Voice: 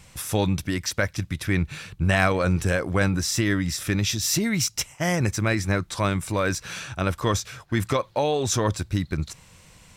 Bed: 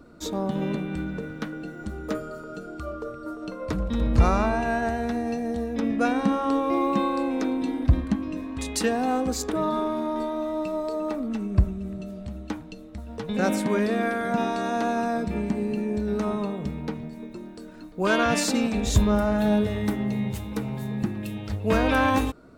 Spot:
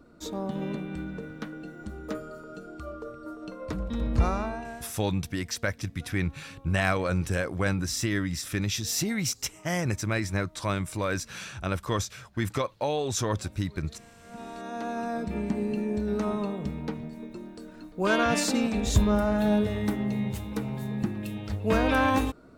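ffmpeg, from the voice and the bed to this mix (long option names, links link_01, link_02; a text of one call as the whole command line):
ffmpeg -i stem1.wav -i stem2.wav -filter_complex "[0:a]adelay=4650,volume=-5dB[link_01];[1:a]volume=22dB,afade=type=out:start_time=4.21:duration=0.72:silence=0.0630957,afade=type=in:start_time=14.2:duration=1.38:silence=0.0446684[link_02];[link_01][link_02]amix=inputs=2:normalize=0" out.wav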